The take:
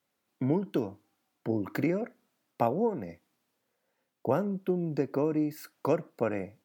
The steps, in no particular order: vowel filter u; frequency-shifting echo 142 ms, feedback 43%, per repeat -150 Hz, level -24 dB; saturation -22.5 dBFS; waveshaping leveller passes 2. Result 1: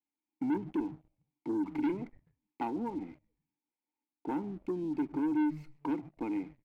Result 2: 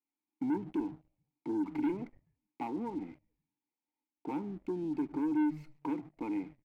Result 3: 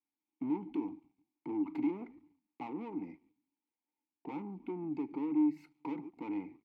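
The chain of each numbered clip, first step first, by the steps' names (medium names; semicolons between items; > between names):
vowel filter > frequency-shifting echo > saturation > waveshaping leveller; saturation > vowel filter > frequency-shifting echo > waveshaping leveller; frequency-shifting echo > saturation > waveshaping leveller > vowel filter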